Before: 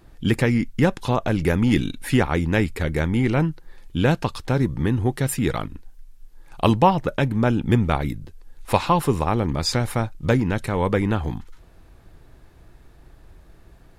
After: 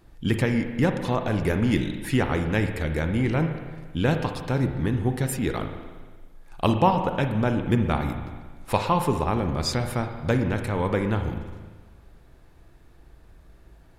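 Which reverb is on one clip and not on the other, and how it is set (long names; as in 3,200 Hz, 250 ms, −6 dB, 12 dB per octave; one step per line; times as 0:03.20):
spring reverb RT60 1.5 s, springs 38/56 ms, chirp 40 ms, DRR 6 dB
level −4 dB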